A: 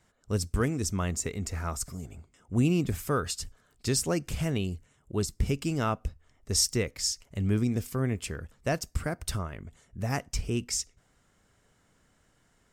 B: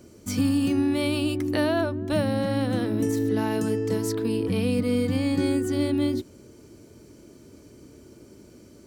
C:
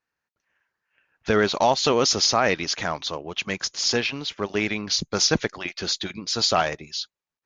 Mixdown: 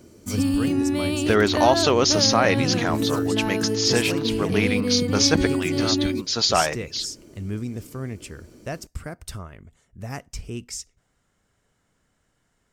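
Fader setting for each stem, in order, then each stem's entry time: -3.0, +0.5, +1.0 dB; 0.00, 0.00, 0.00 s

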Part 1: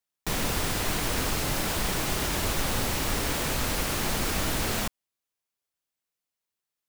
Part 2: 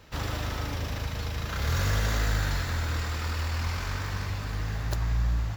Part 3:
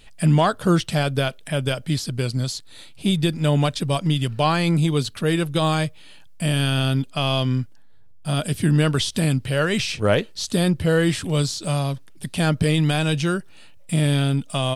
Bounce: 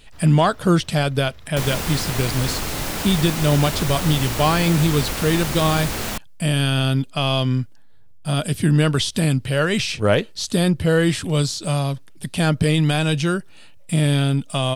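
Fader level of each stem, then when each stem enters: +2.0, -16.0, +1.5 dB; 1.30, 0.00, 0.00 s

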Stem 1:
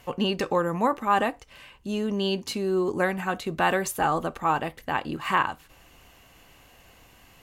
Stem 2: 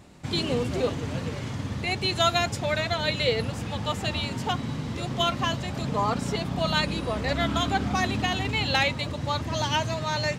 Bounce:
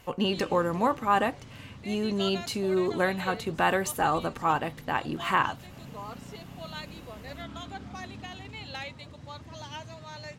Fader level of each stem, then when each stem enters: -1.5, -15.0 dB; 0.00, 0.00 s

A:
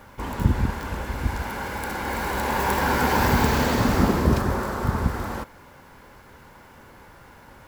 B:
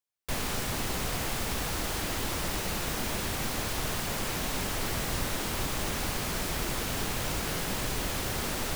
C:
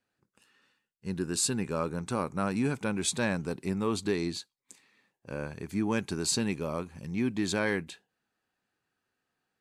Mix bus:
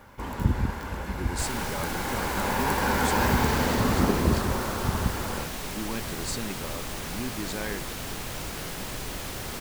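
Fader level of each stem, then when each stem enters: -3.5, -3.0, -5.5 dB; 0.00, 1.10, 0.00 s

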